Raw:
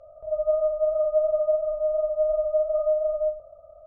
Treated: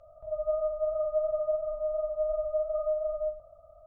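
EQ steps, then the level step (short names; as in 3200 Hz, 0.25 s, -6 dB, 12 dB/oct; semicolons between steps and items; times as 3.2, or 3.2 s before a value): bell 470 Hz -14 dB 0.71 oct; 0.0 dB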